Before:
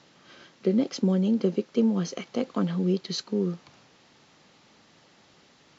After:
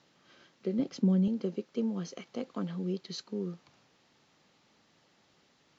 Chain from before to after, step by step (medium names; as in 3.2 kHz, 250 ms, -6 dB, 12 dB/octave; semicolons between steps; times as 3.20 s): 0.79–1.28 s: tone controls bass +10 dB, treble -2 dB; trim -9 dB